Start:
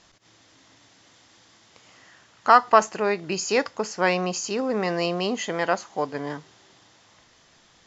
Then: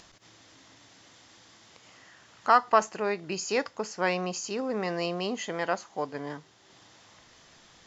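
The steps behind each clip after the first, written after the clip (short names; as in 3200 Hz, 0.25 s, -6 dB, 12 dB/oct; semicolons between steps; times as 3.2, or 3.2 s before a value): upward compressor, threshold -42 dBFS; gain -5.5 dB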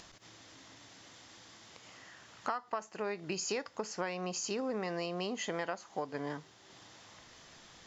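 compressor 16:1, threshold -32 dBFS, peak gain reduction 18.5 dB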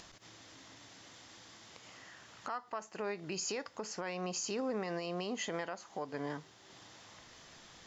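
limiter -28 dBFS, peak gain reduction 10 dB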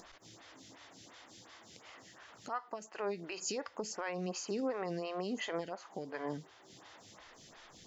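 photocell phaser 2.8 Hz; gain +3 dB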